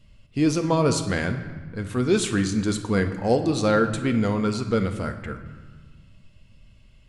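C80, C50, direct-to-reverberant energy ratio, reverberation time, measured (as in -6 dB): 11.0 dB, 9.5 dB, 6.0 dB, 1.4 s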